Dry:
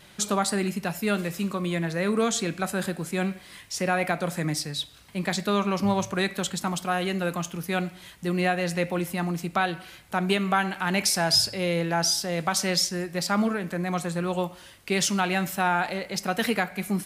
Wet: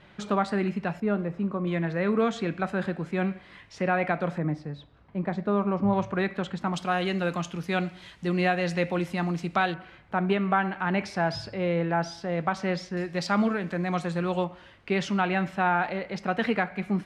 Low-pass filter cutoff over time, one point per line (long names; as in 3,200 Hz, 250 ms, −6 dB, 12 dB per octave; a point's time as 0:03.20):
2,300 Hz
from 0:01.00 1,100 Hz
from 0:01.67 2,300 Hz
from 0:04.38 1,100 Hz
from 0:05.93 2,000 Hz
from 0:06.74 4,700 Hz
from 0:09.74 1,900 Hz
from 0:12.97 4,300 Hz
from 0:14.44 2,400 Hz